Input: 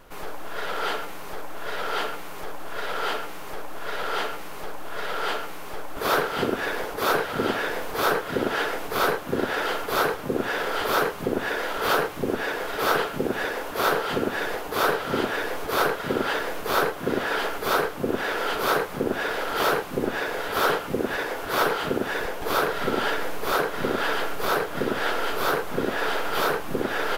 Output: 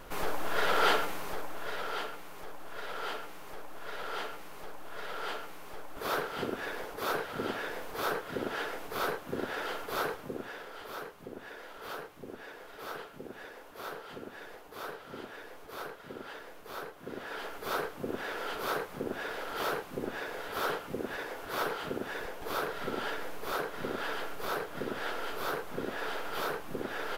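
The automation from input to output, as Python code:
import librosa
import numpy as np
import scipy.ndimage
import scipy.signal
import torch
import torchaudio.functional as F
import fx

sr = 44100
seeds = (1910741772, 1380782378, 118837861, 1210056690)

y = fx.gain(x, sr, db=fx.line((0.91, 2.0), (2.09, -10.0), (10.14, -10.0), (10.69, -19.0), (16.85, -19.0), (17.76, -10.5)))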